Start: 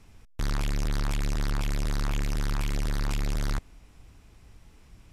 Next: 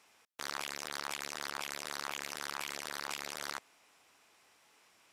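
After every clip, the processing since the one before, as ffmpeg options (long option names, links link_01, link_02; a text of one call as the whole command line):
ffmpeg -i in.wav -af "highpass=660,volume=-1dB" out.wav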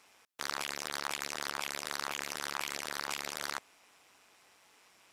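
ffmpeg -i in.wav -af "tremolo=f=190:d=0.519,volume=5dB" out.wav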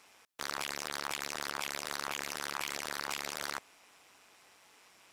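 ffmpeg -i in.wav -af "asoftclip=type=tanh:threshold=-24dB,volume=2dB" out.wav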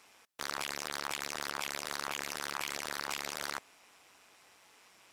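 ffmpeg -i in.wav -ar 48000 -c:a aac -b:a 192k out.aac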